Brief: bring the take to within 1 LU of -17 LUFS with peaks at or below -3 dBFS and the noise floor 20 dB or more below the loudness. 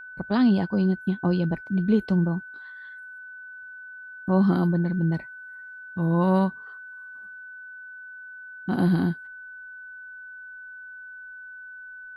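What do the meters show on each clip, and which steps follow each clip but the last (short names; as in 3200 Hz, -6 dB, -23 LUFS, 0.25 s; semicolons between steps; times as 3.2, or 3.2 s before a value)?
steady tone 1500 Hz; tone level -39 dBFS; loudness -24.0 LUFS; peak -11.0 dBFS; loudness target -17.0 LUFS
-> notch 1500 Hz, Q 30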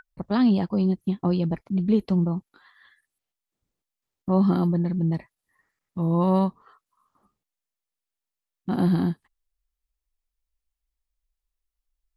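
steady tone none; loudness -24.0 LUFS; peak -11.0 dBFS; loudness target -17.0 LUFS
-> gain +7 dB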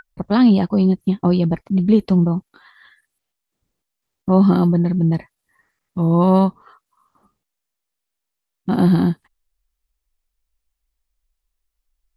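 loudness -17.0 LUFS; peak -4.0 dBFS; noise floor -81 dBFS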